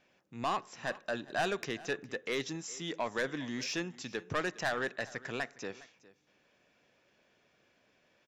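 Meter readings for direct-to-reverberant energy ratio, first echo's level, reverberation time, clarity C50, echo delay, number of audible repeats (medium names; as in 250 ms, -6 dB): no reverb, -20.0 dB, no reverb, no reverb, 409 ms, 1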